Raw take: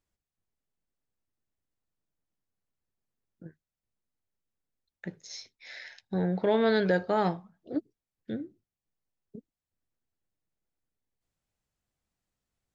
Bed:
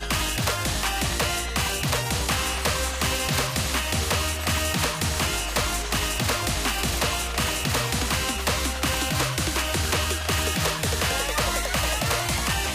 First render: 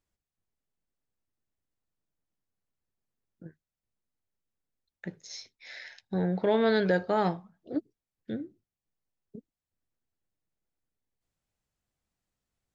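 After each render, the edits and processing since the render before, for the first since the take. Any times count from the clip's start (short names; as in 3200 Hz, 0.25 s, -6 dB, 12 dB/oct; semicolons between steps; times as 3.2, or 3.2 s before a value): nothing audible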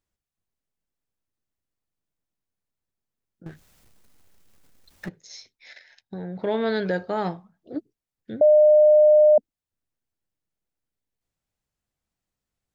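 3.46–5.09 power-law curve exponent 0.5; 5.73–6.39 level quantiser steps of 11 dB; 8.41–9.38 bleep 606 Hz -11 dBFS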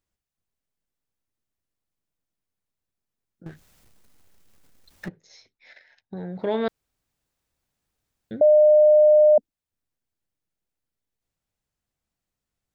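5.08–6.17 LPF 1800 Hz 6 dB/oct; 6.68–8.31 room tone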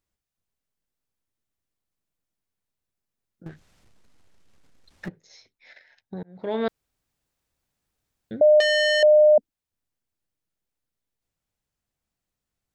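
3.48–5.05 air absorption 55 m; 6.23–6.63 fade in; 8.6–9.03 core saturation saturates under 2200 Hz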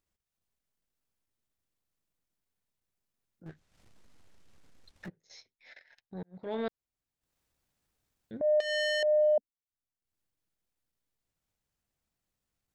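compressor 1.5:1, threshold -41 dBFS, peak gain reduction 9.5 dB; transient shaper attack -8 dB, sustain -12 dB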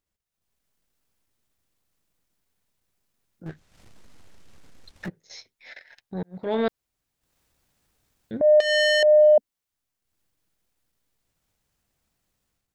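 AGC gain up to 10 dB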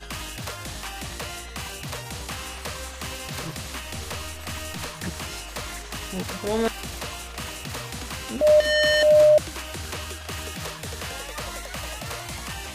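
add bed -9 dB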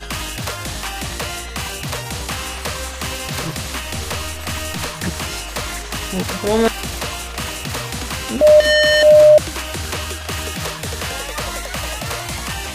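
gain +8.5 dB; limiter -3 dBFS, peak gain reduction 3 dB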